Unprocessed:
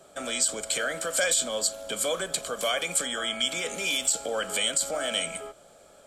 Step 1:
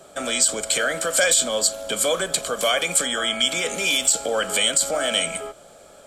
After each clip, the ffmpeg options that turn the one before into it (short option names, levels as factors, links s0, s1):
-af "acontrast=71"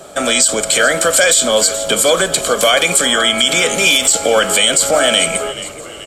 -filter_complex "[0:a]asplit=6[s0][s1][s2][s3][s4][s5];[s1]adelay=429,afreqshift=-81,volume=0.141[s6];[s2]adelay=858,afreqshift=-162,volume=0.0733[s7];[s3]adelay=1287,afreqshift=-243,volume=0.038[s8];[s4]adelay=1716,afreqshift=-324,volume=0.02[s9];[s5]adelay=2145,afreqshift=-405,volume=0.0104[s10];[s0][s6][s7][s8][s9][s10]amix=inputs=6:normalize=0,alimiter=level_in=3.98:limit=0.891:release=50:level=0:latency=1,volume=0.891"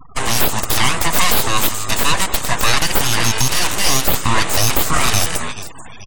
-af "aeval=exprs='abs(val(0))':c=same,afftfilt=real='re*gte(hypot(re,im),0.0251)':imag='im*gte(hypot(re,im),0.0251)':win_size=1024:overlap=0.75"